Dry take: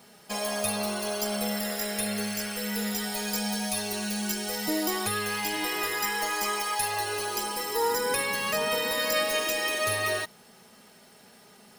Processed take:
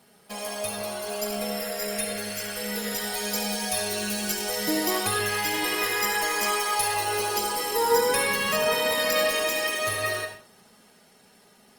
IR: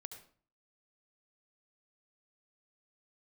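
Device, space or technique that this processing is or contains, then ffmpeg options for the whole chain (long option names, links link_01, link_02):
speakerphone in a meeting room: -filter_complex "[0:a]asettb=1/sr,asplit=3[link_01][link_02][link_03];[link_01]atrim=end=1.084[link_04];[link_02]atrim=start=1.08:end=2.05,asetpts=PTS-STARTPTS,afade=type=in:duration=0.004:curve=qsin,afade=type=out:start_time=0.966:duration=0.004:curve=qsin,aecho=1:1:4.4:0.58,atrim=end_sample=42777[link_05];[link_03]atrim=start=2.046[link_06];[link_04][link_05]acrossfade=duration=0.004:curve1=hsin:curve2=qsin[link_07];[link_07][link_06]acrossfade=duration=0.004:curve1=qsin:curve2=hsin[link_08];[1:a]atrim=start_sample=2205[link_09];[link_08][link_09]afir=irnorm=-1:irlink=0,dynaudnorm=framelen=250:gausssize=21:maxgain=6dB,volume=2.5dB" -ar 48000 -c:a libopus -b:a 32k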